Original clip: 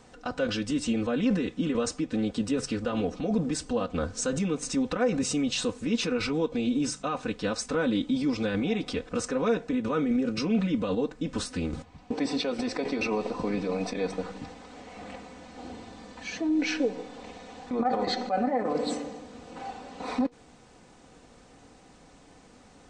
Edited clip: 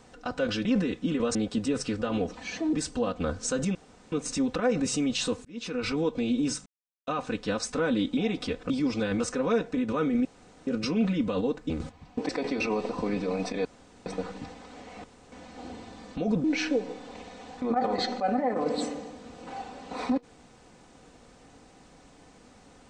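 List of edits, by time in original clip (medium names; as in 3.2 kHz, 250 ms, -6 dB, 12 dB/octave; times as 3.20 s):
0.65–1.20 s: delete
1.90–2.18 s: delete
3.18–3.47 s: swap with 16.15–16.53 s
4.49 s: insert room tone 0.37 s
5.82–6.29 s: fade in
7.03 s: insert silence 0.41 s
8.13–8.63 s: move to 9.16 s
10.21 s: insert room tone 0.42 s
11.24–11.63 s: delete
12.22–12.70 s: delete
14.06 s: insert room tone 0.41 s
15.04–15.32 s: room tone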